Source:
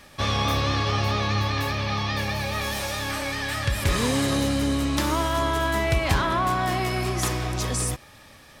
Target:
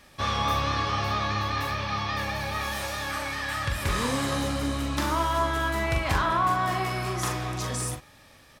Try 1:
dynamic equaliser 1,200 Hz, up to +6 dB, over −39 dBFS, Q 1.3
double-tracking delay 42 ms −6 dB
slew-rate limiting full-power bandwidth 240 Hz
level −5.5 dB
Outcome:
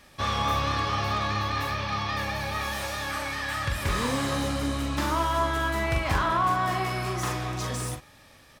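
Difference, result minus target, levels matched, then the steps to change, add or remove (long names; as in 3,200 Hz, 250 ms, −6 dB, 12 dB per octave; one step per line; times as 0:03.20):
slew-rate limiting: distortion +20 dB
change: slew-rate limiting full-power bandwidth 706 Hz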